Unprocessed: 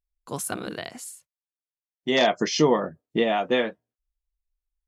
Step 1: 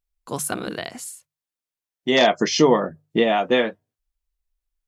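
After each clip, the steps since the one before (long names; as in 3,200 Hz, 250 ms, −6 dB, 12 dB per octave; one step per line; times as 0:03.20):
mains-hum notches 50/100/150 Hz
level +4 dB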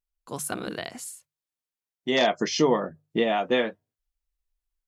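automatic gain control gain up to 4 dB
level −7 dB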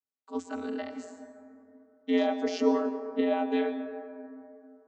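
brickwall limiter −16 dBFS, peak gain reduction 6.5 dB
channel vocoder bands 32, square 87.8 Hz
on a send at −8 dB: convolution reverb RT60 2.7 s, pre-delay 103 ms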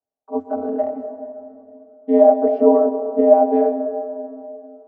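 low-pass with resonance 680 Hz, resonance Q 4.9
level +7 dB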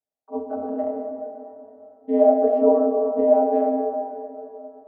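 dense smooth reverb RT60 2.7 s, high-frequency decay 0.45×, DRR 3 dB
level −5.5 dB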